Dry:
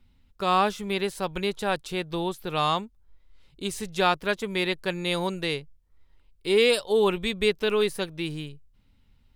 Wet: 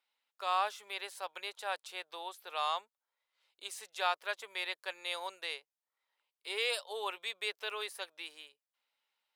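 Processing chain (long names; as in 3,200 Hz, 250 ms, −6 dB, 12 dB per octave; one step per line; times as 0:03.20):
high-pass filter 610 Hz 24 dB per octave
level −8.5 dB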